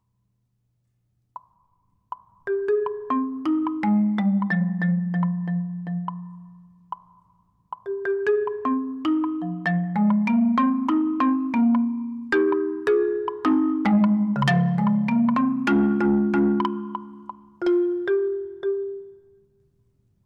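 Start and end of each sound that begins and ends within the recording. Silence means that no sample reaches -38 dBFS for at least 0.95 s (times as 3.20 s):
1.36–19.06 s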